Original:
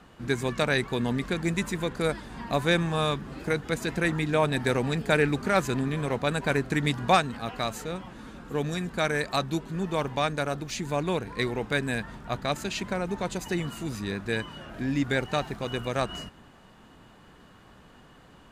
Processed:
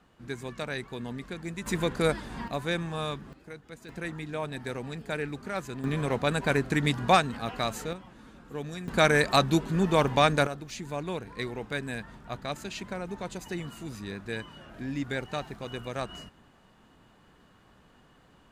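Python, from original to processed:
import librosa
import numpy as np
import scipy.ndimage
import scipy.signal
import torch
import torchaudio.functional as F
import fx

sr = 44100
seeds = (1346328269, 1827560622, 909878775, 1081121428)

y = fx.gain(x, sr, db=fx.steps((0.0, -9.5), (1.66, 1.5), (2.48, -6.5), (3.33, -17.0), (3.89, -10.0), (5.84, 0.0), (7.93, -7.5), (8.88, 5.0), (10.47, -6.0)))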